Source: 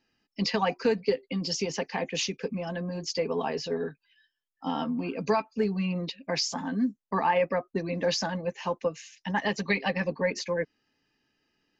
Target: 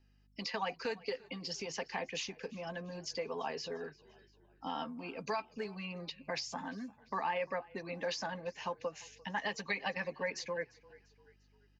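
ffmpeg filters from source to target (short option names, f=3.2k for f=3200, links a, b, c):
-filter_complex "[0:a]aeval=exprs='val(0)+0.000794*(sin(2*PI*50*n/s)+sin(2*PI*2*50*n/s)/2+sin(2*PI*3*50*n/s)/3+sin(2*PI*4*50*n/s)/4+sin(2*PI*5*50*n/s)/5)':c=same,acrossover=split=570|2100[a][b][c];[a]acompressor=threshold=-41dB:ratio=4[d];[b]acompressor=threshold=-29dB:ratio=4[e];[c]acompressor=threshold=-35dB:ratio=4[f];[d][e][f]amix=inputs=3:normalize=0,asplit=4[g][h][i][j];[h]adelay=346,afreqshift=-32,volume=-23dB[k];[i]adelay=692,afreqshift=-64,volume=-29.2dB[l];[j]adelay=1038,afreqshift=-96,volume=-35.4dB[m];[g][k][l][m]amix=inputs=4:normalize=0,volume=-5dB"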